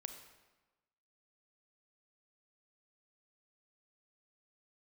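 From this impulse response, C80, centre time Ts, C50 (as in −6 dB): 9.5 dB, 22 ms, 8.0 dB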